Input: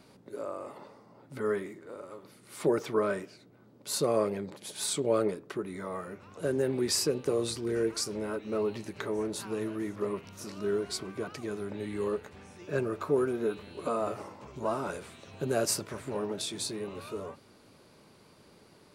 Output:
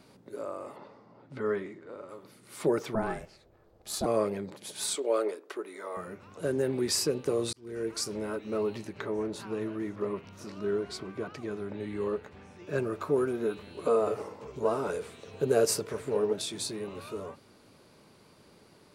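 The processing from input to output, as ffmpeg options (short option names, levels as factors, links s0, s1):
-filter_complex "[0:a]asettb=1/sr,asplit=3[s0][s1][s2];[s0]atrim=end=0.764[s3];[s1]atrim=start=0.76:end=2.09,asetpts=PTS-STARTPTS,afade=t=in:d=0.004:c=qsin,afade=t=out:st=1.326:d=0.004:c=qsin,lowpass=4600[s4];[s2]atrim=start=2.086[s5];[s3][s4]acrossfade=d=0.004:c1=hsin:c2=qsin[s6];[s6][s5]acrossfade=d=0.004:c1=qsin:c2=hsin,asettb=1/sr,asplit=3[s7][s8][s9];[s7]atrim=end=2.954[s10];[s8]atrim=start=2.95:end=4.06,asetpts=PTS-STARTPTS,afade=t=in:d=0.004:c=qsin,afade=t=out:st=1.106:d=0.004:c=qsin,aeval=exprs='val(0)*sin(2*PI*220*n/s)':c=same[s11];[s9]atrim=start=4.056[s12];[s10][s11]acrossfade=d=0.004:c1=hsin:c2=qsin[s13];[s13][s12]acrossfade=d=0.004:c1=qsin:c2=hsin,asettb=1/sr,asplit=3[s14][s15][s16];[s14]atrim=end=4.954[s17];[s15]atrim=start=4.95:end=5.97,asetpts=PTS-STARTPTS,afade=t=in:d=0.004:c=qsin,afade=t=out:st=1.016:d=0.004:c=qsin,highpass=f=350:w=0.5412,highpass=f=350:w=1.3066[s18];[s16]atrim=start=5.966[s19];[s17][s18]acrossfade=d=0.004:c1=hsin:c2=qsin[s20];[s20][s19]acrossfade=d=0.004:c1=qsin:c2=hsin,asettb=1/sr,asplit=3[s21][s22][s23];[s21]atrim=end=8.874[s24];[s22]atrim=start=8.87:end=12.67,asetpts=PTS-STARTPTS,afade=t=in:d=0.004:c=qsin,afade=t=out:st=3.796:d=0.004:c=qsin,equalizer=f=12000:w=0.41:g=-11[s25];[s23]atrim=start=12.666[s26];[s24][s25]acrossfade=d=0.004:c1=hsin:c2=qsin[s27];[s27][s26]acrossfade=d=0.004:c1=qsin:c2=hsin,asettb=1/sr,asplit=3[s28][s29][s30];[s28]atrim=end=13.864[s31];[s29]atrim=start=13.86:end=16.33,asetpts=PTS-STARTPTS,afade=t=in:d=0.004:c=qsin,afade=t=out:st=2.466:d=0.004:c=qsin,equalizer=f=450:t=o:w=0.25:g=13[s32];[s30]atrim=start=16.326[s33];[s31][s32]acrossfade=d=0.004:c1=hsin:c2=qsin[s34];[s34][s33]acrossfade=d=0.004:c1=qsin:c2=hsin,asplit=2[s35][s36];[s35]atrim=end=7.53,asetpts=PTS-STARTPTS,afade=t=out:st=7.526:d=0.004:c=hsin[s37];[s36]atrim=start=7.53,asetpts=PTS-STARTPTS,afade=t=in:d=0.51[s38];[s37][s38]concat=n=2:v=0:a=1"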